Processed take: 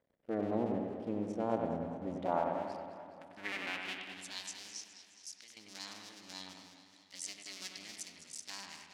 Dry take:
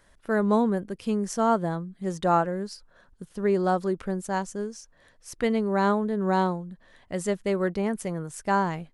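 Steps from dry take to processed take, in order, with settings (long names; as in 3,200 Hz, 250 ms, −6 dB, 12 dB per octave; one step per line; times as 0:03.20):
sub-harmonics by changed cycles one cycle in 2, muted
flat-topped bell 750 Hz −9.5 dB 2.6 octaves
leveller curve on the samples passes 1
0:04.71–0:05.57: downward compressor 3 to 1, threshold −43 dBFS, peak gain reduction 13.5 dB
band-pass filter sweep 520 Hz → 5,300 Hz, 0:02.09–0:04.65
bucket-brigade delay 96 ms, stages 2,048, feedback 59%, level −4.5 dB
on a send at −16.5 dB: convolution reverb RT60 1.4 s, pre-delay 3 ms
on the sum: feedback echo with a swinging delay time 209 ms, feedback 62%, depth 117 cents, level −12 dB
level +2.5 dB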